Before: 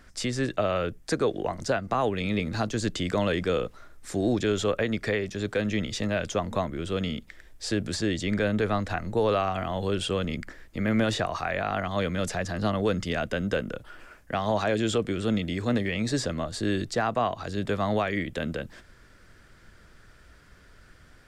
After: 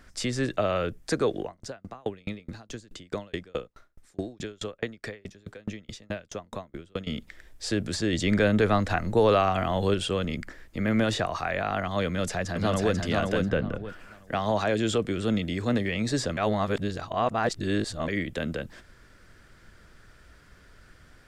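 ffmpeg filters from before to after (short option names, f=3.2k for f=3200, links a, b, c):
-filter_complex "[0:a]asettb=1/sr,asplit=3[a][b][c];[a]atrim=end=1.424[d];[b]atrim=start=1.42:end=7.07,asetpts=PTS-STARTPTS,afade=t=in:d=0.004:c=qsin,afade=t=out:st=5.646:d=0.004:c=qsin,aeval=exprs='val(0)*pow(10,-36*if(lt(mod(4.7*n/s,1),2*abs(4.7)/1000),1-mod(4.7*n/s,1)/(2*abs(4.7)/1000),(mod(4.7*n/s,1)-2*abs(4.7)/1000)/(1-2*abs(4.7)/1000))/20)':c=same[e];[c]atrim=start=7.066[f];[d][e]acrossfade=d=0.004:c1=hsin:c2=qsin[g];[g][f]acrossfade=d=0.004:c1=qsin:c2=hsin,asplit=2[h][i];[i]afade=t=in:st=12.06:d=0.01,afade=t=out:st=12.94:d=0.01,aecho=0:1:490|980|1470|1960:0.707946|0.176986|0.0442466|0.0110617[j];[h][j]amix=inputs=2:normalize=0,asplit=3[k][l][m];[k]afade=t=out:st=13.48:d=0.02[n];[l]bass=f=250:g=6,treble=f=4k:g=-13,afade=t=in:st=13.48:d=0.02,afade=t=out:st=13.88:d=0.02[o];[m]afade=t=in:st=13.88:d=0.02[p];[n][o][p]amix=inputs=3:normalize=0,asplit=5[q][r][s][t][u];[q]atrim=end=8.132[v];[r]atrim=start=8.128:end=9.942,asetpts=PTS-STARTPTS,volume=3.5dB[w];[s]atrim=start=9.938:end=16.372[x];[t]atrim=start=16.368:end=18.082,asetpts=PTS-STARTPTS,areverse[y];[u]atrim=start=18.078[z];[v][w]acrossfade=d=0.004:c1=hsin:c2=hsin[aa];[aa][x]acrossfade=d=0.004:c1=hsin:c2=hsin[ab];[ab][y]acrossfade=d=0.004:c1=hsin:c2=hsin[ac];[ac][z]acrossfade=d=0.004:c1=hsin:c2=hsin"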